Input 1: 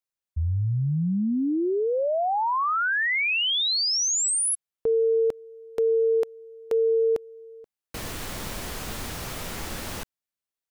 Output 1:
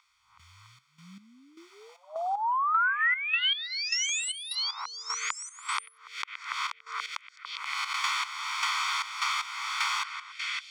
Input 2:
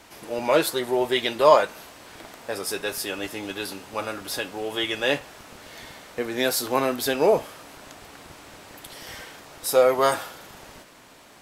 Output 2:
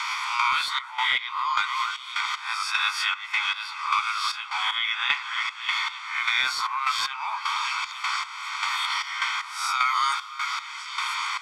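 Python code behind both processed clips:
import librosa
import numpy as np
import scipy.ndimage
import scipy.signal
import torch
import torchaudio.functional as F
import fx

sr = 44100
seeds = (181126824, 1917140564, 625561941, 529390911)

p1 = fx.spec_swells(x, sr, rise_s=0.5)
p2 = scipy.signal.sosfilt(scipy.signal.cheby2(6, 60, 530.0, 'highpass', fs=sr, output='sos'), p1)
p3 = p2 + 0.89 * np.pad(p2, (int(0.9 * sr / 1000.0), 0))[:len(p2)]
p4 = fx.over_compress(p3, sr, threshold_db=-23.0, ratio=-1.0)
p5 = p3 + (p4 * 10.0 ** (1.0 / 20.0))
p6 = fx.echo_stepped(p5, sr, ms=285, hz=1400.0, octaves=0.7, feedback_pct=70, wet_db=-11.0)
p7 = fx.step_gate(p6, sr, bpm=153, pattern='....xxxx..xx', floor_db=-12.0, edge_ms=4.5)
p8 = np.clip(p7, -10.0 ** (-8.0 / 20.0), 10.0 ** (-8.0 / 20.0))
p9 = fx.air_absorb(p8, sr, metres=140.0)
y = fx.band_squash(p9, sr, depth_pct=100)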